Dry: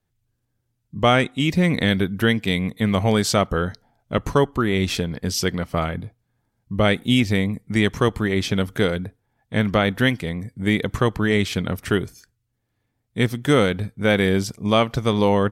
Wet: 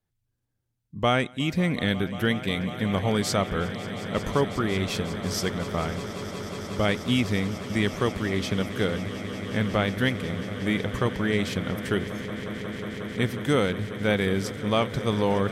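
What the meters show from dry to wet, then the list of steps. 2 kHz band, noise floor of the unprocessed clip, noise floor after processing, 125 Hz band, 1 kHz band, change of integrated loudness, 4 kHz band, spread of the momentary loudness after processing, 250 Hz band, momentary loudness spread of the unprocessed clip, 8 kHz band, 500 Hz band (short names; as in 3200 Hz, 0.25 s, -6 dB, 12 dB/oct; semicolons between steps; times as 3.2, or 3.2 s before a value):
-5.0 dB, -74 dBFS, -77 dBFS, -5.0 dB, -5.0 dB, -5.5 dB, -5.0 dB, 9 LU, -5.0 dB, 9 LU, -5.0 dB, -5.0 dB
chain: swelling echo 0.181 s, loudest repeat 8, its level -17.5 dB; gain -6 dB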